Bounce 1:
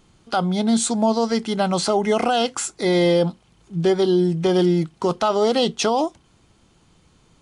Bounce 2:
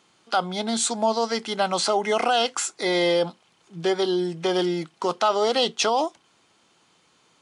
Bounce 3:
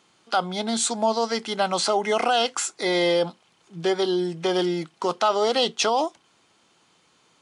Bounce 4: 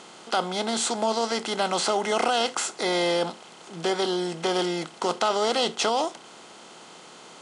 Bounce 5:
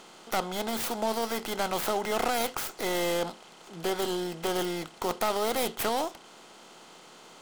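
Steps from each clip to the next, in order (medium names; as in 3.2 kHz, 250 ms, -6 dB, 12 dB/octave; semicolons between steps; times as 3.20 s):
frequency weighting A
no audible change
spectral levelling over time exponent 0.6; trim -5 dB
tracing distortion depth 0.37 ms; trim -4.5 dB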